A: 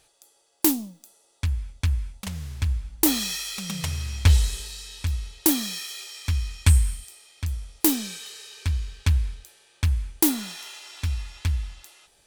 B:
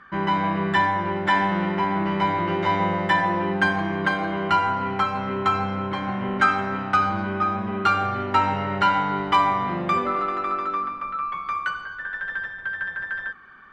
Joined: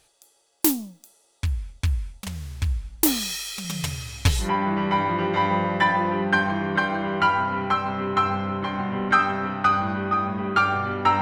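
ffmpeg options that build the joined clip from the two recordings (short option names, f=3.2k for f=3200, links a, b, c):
-filter_complex "[0:a]asettb=1/sr,asplit=3[a][b][c];[a]atrim=end=3.644[d];[b]atrim=start=3.64:end=4.5,asetpts=PTS-STARTPTS,afade=t=in:d=0.004:c=qsin,afade=t=out:st=0.856:d=0.004:c=qsin,aecho=1:1:7:0.68,atrim=end_sample=37926[e];[c]atrim=start=4.496[f];[d][e]acrossfade=d=0.004:c1=hsin:c2=qsin[g];[g][f]acrossfade=d=0.004:c1=qsin:c2=hsin,apad=whole_dur=11.21,atrim=end=11.21,atrim=end=4.5,asetpts=PTS-STARTPTS[h];[1:a]atrim=start=1.67:end=8.5,asetpts=PTS-STARTPTS[i];[h][i]acrossfade=d=0.12:c1=tri:c2=tri"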